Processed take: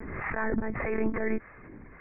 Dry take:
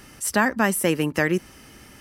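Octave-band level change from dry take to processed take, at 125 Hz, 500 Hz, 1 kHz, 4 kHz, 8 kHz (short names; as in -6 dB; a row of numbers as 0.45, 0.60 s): -9.5 dB, -7.0 dB, -10.5 dB, under -35 dB, under -40 dB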